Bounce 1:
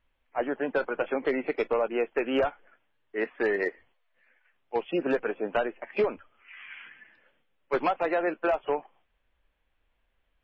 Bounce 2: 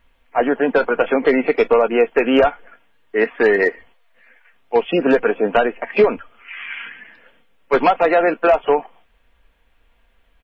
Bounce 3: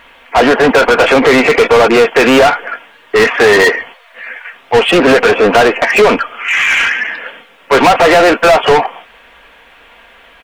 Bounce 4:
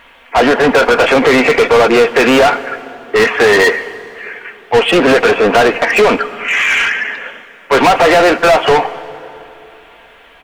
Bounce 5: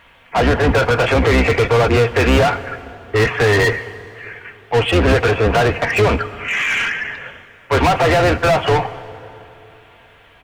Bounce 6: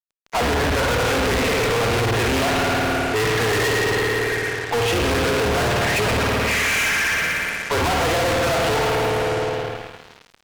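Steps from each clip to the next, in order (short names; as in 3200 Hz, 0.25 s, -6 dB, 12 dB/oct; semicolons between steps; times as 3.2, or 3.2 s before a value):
comb 4.3 ms, depth 32%; in parallel at -2.5 dB: limiter -25.5 dBFS, peak gain reduction 9.5 dB; on the sum: gain +9 dB
overdrive pedal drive 29 dB, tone 3800 Hz, clips at -4.5 dBFS; gain +3.5 dB
plate-style reverb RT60 3.3 s, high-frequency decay 0.65×, DRR 15 dB; gain -1.5 dB
octaver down 2 oct, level +4 dB; gain -6 dB
spring tank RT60 2.4 s, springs 53 ms, chirp 60 ms, DRR -1 dB; fuzz box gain 27 dB, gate -36 dBFS; gain -5.5 dB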